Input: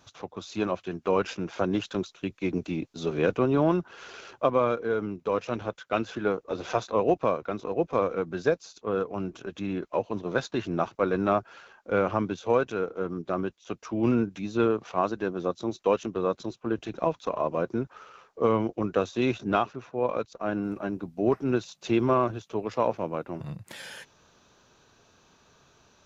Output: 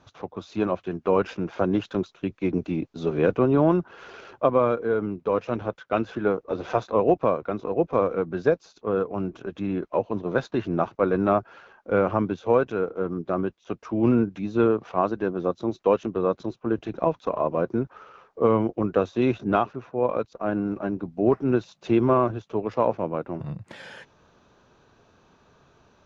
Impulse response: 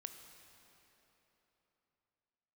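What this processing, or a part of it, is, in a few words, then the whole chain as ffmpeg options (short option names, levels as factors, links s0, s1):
through cloth: -af "lowpass=6700,highshelf=f=2500:g=-11.5,volume=1.58"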